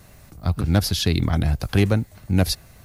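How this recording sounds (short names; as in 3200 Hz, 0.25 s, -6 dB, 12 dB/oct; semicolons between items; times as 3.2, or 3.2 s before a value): noise floor -49 dBFS; spectral tilt -5.5 dB/oct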